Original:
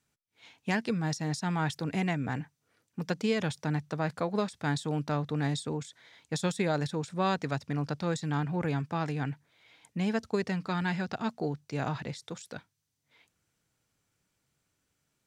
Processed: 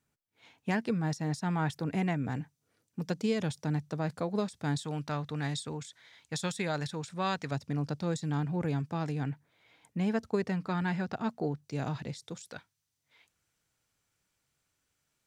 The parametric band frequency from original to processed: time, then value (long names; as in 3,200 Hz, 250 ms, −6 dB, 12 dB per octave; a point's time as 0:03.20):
parametric band −6 dB 2.7 octaves
4,800 Hz
from 0:02.25 1,700 Hz
from 0:04.79 330 Hz
from 0:07.51 1,700 Hz
from 0:09.26 4,700 Hz
from 0:11.64 1,400 Hz
from 0:12.51 210 Hz